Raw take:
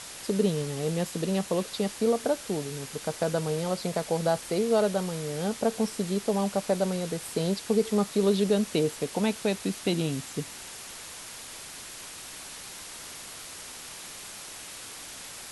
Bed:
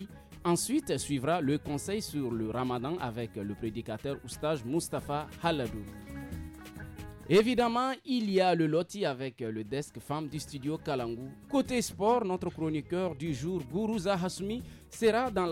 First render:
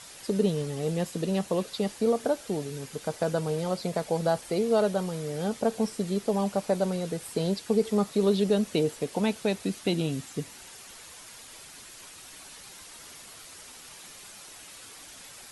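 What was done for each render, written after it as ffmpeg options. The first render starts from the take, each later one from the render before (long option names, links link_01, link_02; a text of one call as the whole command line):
ffmpeg -i in.wav -af "afftdn=noise_reduction=7:noise_floor=-43" out.wav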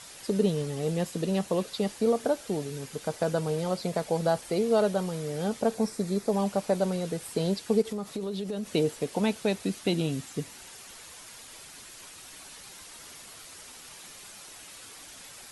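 ffmpeg -i in.wav -filter_complex "[0:a]asettb=1/sr,asplit=3[link_01][link_02][link_03];[link_01]atrim=end=5.744[link_04];[link_02]atrim=start=5.74:end=6.33,asetpts=PTS-STARTPTS,afade=type=in:duration=0.004:curve=qsin,afade=type=out:start_time=0.586:duration=0.004:curve=qsin,equalizer=frequency=3000:width_type=o:width=0.23:gain=-12[link_05];[link_03]atrim=start=6.326[link_06];[link_04][link_05]acrossfade=duration=0.004:curve1=hsin:curve2=qsin[link_07];[link_07][link_06]acrossfade=duration=0.004:curve1=qsin:curve2=hsin,asplit=3[link_08][link_09][link_10];[link_08]afade=type=out:start_time=7.81:duration=0.02[link_11];[link_09]acompressor=threshold=-29dB:ratio=12:attack=3.2:release=140:knee=1:detection=peak,afade=type=in:start_time=7.81:duration=0.02,afade=type=out:start_time=8.72:duration=0.02[link_12];[link_10]afade=type=in:start_time=8.72:duration=0.02[link_13];[link_11][link_12][link_13]amix=inputs=3:normalize=0" out.wav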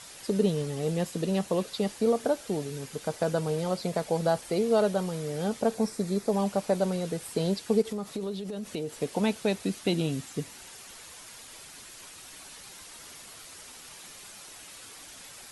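ffmpeg -i in.wav -filter_complex "[0:a]asettb=1/sr,asplit=3[link_01][link_02][link_03];[link_01]atrim=end=8.324[link_04];[link_02]atrim=start=8.32:end=8.93,asetpts=PTS-STARTPTS,afade=type=in:duration=0.004:curve=qsin,afade=type=out:start_time=0.606:duration=0.004:curve=qsin,acompressor=threshold=-33dB:ratio=2.5:attack=3.2:release=140:knee=1:detection=peak[link_05];[link_03]atrim=start=8.926[link_06];[link_04][link_05]acrossfade=duration=0.004:curve1=hsin:curve2=qsin[link_07];[link_07][link_06]acrossfade=duration=0.004:curve1=qsin:curve2=hsin" out.wav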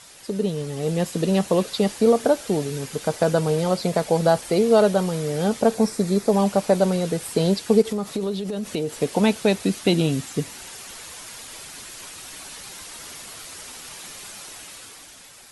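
ffmpeg -i in.wav -af "dynaudnorm=framelen=100:gausssize=17:maxgain=8dB" out.wav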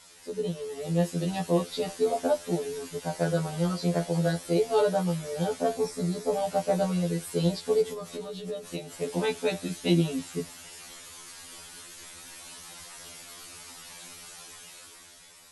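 ffmpeg -i in.wav -af "flanger=delay=9.6:depth=2.7:regen=-70:speed=0.13:shape=sinusoidal,afftfilt=real='re*2*eq(mod(b,4),0)':imag='im*2*eq(mod(b,4),0)':win_size=2048:overlap=0.75" out.wav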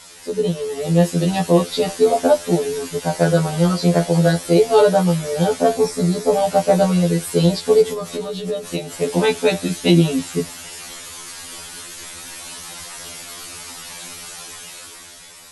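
ffmpeg -i in.wav -af "volume=11dB,alimiter=limit=-3dB:level=0:latency=1" out.wav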